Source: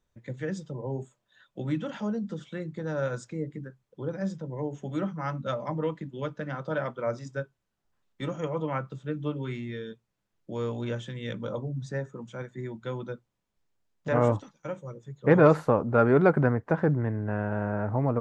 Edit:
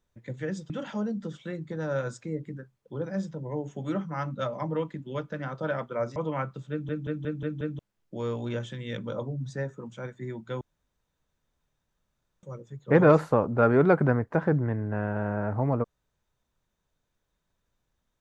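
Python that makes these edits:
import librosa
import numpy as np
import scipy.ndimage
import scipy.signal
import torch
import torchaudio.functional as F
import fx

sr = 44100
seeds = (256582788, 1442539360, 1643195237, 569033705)

y = fx.edit(x, sr, fx.cut(start_s=0.7, length_s=1.07),
    fx.cut(start_s=7.23, length_s=1.29),
    fx.stutter_over(start_s=9.07, slice_s=0.18, count=6),
    fx.room_tone_fill(start_s=12.97, length_s=1.82), tone=tone)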